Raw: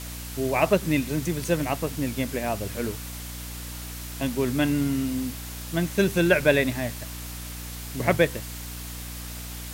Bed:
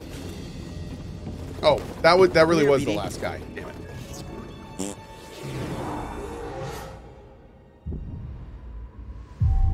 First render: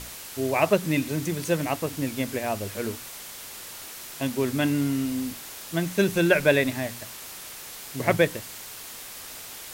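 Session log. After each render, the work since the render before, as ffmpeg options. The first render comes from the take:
-af "bandreject=f=60:t=h:w=6,bandreject=f=120:t=h:w=6,bandreject=f=180:t=h:w=6,bandreject=f=240:t=h:w=6,bandreject=f=300:t=h:w=6"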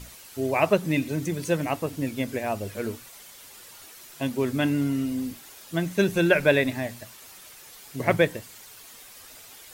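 -af "afftdn=nr=9:nf=-41"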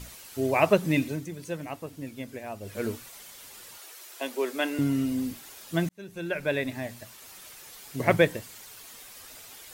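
-filter_complex "[0:a]asettb=1/sr,asplit=3[a][b][c];[a]atrim=end=3.784[d];[b]atrim=start=3.78:end=4.79,asetpts=PTS-STARTPTS,afade=t=in:d=0.004:c=qsin,afade=t=out:st=1.006:d=0.004:c=qsin,highpass=f=360:w=0.5412,highpass=f=360:w=1.3066[e];[c]atrim=start=4.786[f];[d][e]acrossfade=d=0.004:c1=hsin:c2=qsin[g];[g][f]acrossfade=d=0.004:c1=qsin:c2=hsin,asplit=4[h][i][j][k];[h]atrim=end=1.25,asetpts=PTS-STARTPTS,afade=t=out:st=1.02:d=0.23:silence=0.334965[l];[i]atrim=start=1.25:end=2.6,asetpts=PTS-STARTPTS,volume=-9.5dB[m];[j]atrim=start=2.6:end=5.89,asetpts=PTS-STARTPTS,afade=t=in:d=0.23:silence=0.334965,afade=t=out:st=3.286:d=0.004:c=hsin[n];[k]atrim=start=5.89,asetpts=PTS-STARTPTS,afade=t=in:d=1.55[o];[l][m][n][o]concat=n=4:v=0:a=1"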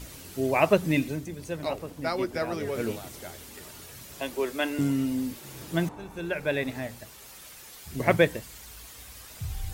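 -filter_complex "[1:a]volume=-13.5dB[a];[0:a][a]amix=inputs=2:normalize=0"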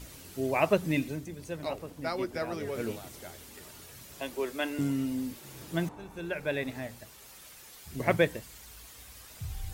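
-af "volume=-4dB"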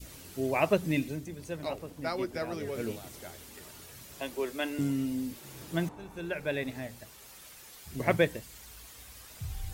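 -af "adynamicequalizer=threshold=0.00562:dfrequency=1100:dqfactor=0.81:tfrequency=1100:tqfactor=0.81:attack=5:release=100:ratio=0.375:range=2:mode=cutabove:tftype=bell"

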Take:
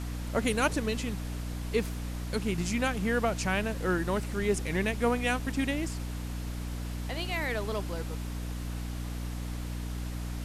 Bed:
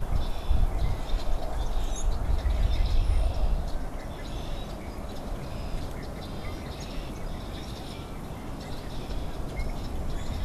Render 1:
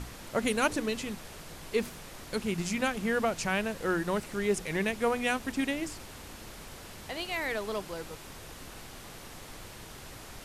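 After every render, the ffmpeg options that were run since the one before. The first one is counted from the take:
-af "bandreject=f=60:t=h:w=6,bandreject=f=120:t=h:w=6,bandreject=f=180:t=h:w=6,bandreject=f=240:t=h:w=6,bandreject=f=300:t=h:w=6"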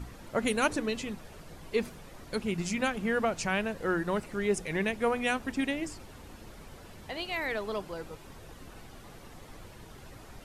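-af "afftdn=nr=9:nf=-47"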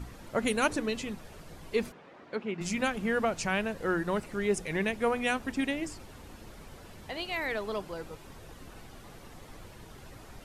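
-filter_complex "[0:a]asplit=3[a][b][c];[a]afade=t=out:st=1.91:d=0.02[d];[b]highpass=250,lowpass=2.5k,afade=t=in:st=1.91:d=0.02,afade=t=out:st=2.6:d=0.02[e];[c]afade=t=in:st=2.6:d=0.02[f];[d][e][f]amix=inputs=3:normalize=0"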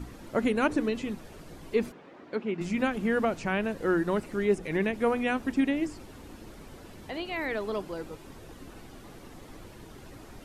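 -filter_complex "[0:a]acrossover=split=3000[a][b];[b]acompressor=threshold=-47dB:ratio=4:attack=1:release=60[c];[a][c]amix=inputs=2:normalize=0,equalizer=f=300:t=o:w=0.99:g=6.5"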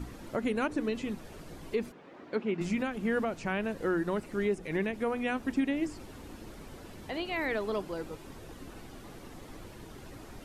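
-af "alimiter=limit=-20dB:level=0:latency=1:release=441"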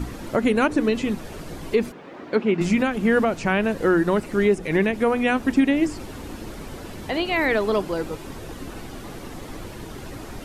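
-af "volume=11dB"

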